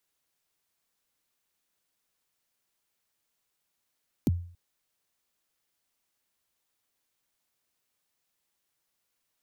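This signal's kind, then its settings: kick drum length 0.28 s, from 340 Hz, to 87 Hz, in 27 ms, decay 0.48 s, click on, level -18 dB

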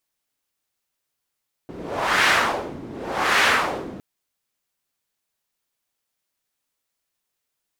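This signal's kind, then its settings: wind-like swept noise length 2.31 s, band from 270 Hz, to 1800 Hz, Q 1.4, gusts 2, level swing 19 dB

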